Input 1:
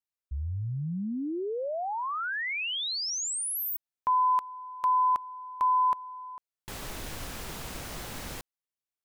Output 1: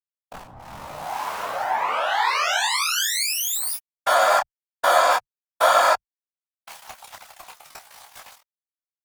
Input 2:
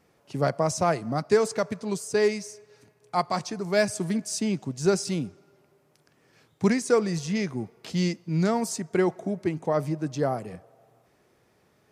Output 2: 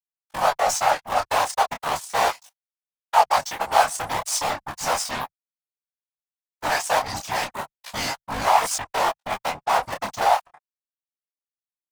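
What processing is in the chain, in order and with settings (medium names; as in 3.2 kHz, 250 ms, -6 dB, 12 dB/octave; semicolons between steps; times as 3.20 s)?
cycle switcher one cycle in 3, inverted; high-pass 55 Hz 12 dB/octave; reverb removal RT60 0.75 s; Chebyshev shaper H 7 -19 dB, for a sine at -8.5 dBFS; in parallel at +3 dB: peak limiter -20 dBFS; on the sum: fuzz box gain 33 dB, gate -41 dBFS; resonant low shelf 540 Hz -13 dB, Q 3; whisper effect; detune thickener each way 12 cents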